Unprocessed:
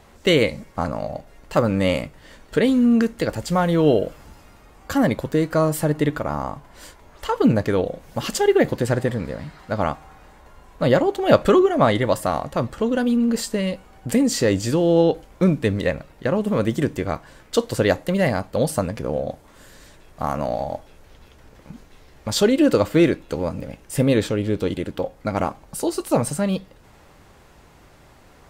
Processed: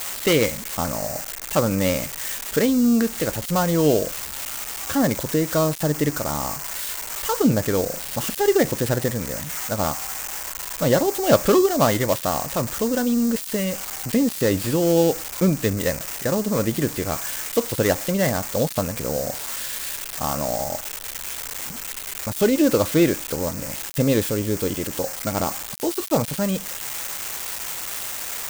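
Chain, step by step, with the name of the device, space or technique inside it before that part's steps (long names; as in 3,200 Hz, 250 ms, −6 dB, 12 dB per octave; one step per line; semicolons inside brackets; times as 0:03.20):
budget class-D amplifier (gap after every zero crossing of 0.13 ms; spike at every zero crossing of −11 dBFS)
level −1.5 dB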